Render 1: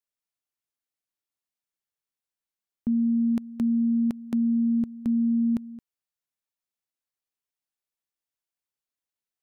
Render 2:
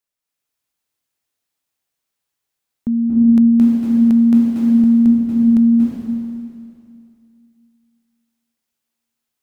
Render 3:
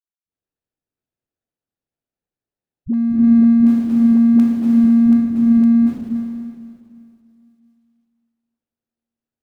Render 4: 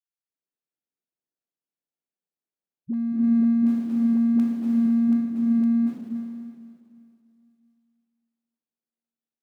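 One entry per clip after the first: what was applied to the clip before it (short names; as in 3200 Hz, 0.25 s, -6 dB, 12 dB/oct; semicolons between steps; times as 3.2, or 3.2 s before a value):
reverb RT60 2.5 s, pre-delay 0.23 s, DRR -4.5 dB; gain +6 dB
median filter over 41 samples; dispersion highs, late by 70 ms, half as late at 300 Hz
HPF 150 Hz 24 dB/oct; gain -8.5 dB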